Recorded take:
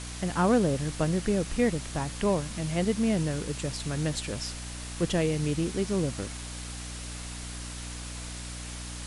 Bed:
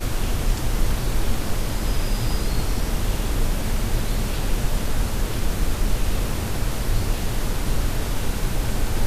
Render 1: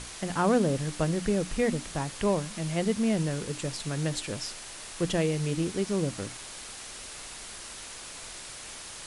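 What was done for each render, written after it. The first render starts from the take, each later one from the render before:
mains-hum notches 60/120/180/240/300 Hz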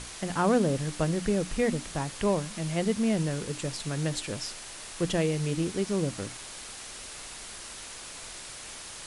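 no processing that can be heard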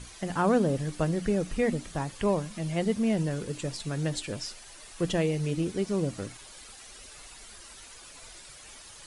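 broadband denoise 10 dB, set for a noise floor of −43 dBFS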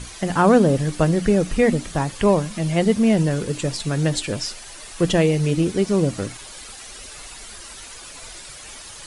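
level +9.5 dB

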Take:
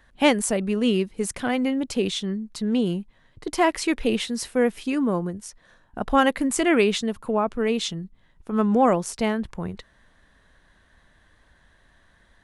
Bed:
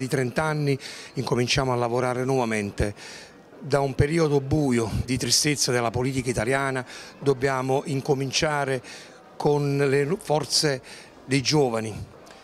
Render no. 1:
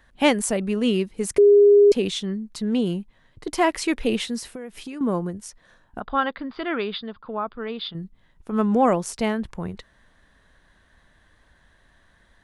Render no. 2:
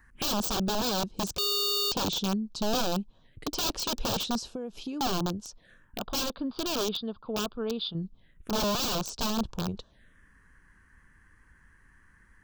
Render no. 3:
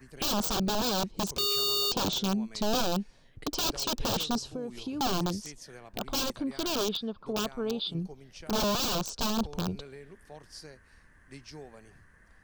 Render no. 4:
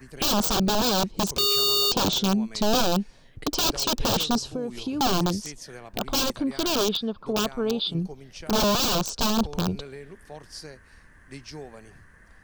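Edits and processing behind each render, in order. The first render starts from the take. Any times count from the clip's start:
0:01.38–0:01.92: beep over 408 Hz −9.5 dBFS; 0:04.38–0:05.01: downward compressor 12 to 1, threshold −31 dBFS; 0:06.00–0:07.95: Chebyshev low-pass with heavy ripple 4,900 Hz, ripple 9 dB
wrap-around overflow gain 21 dB; phaser swept by the level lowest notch 560 Hz, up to 2,000 Hz, full sweep at −35 dBFS
mix in bed −25.5 dB
level +6 dB

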